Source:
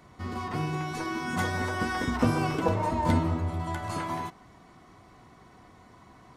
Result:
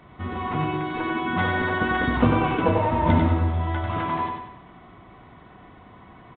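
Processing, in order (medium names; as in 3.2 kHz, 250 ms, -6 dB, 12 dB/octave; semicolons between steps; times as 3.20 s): feedback delay 94 ms, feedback 45%, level -4.5 dB; trim +4.5 dB; µ-law 64 kbps 8 kHz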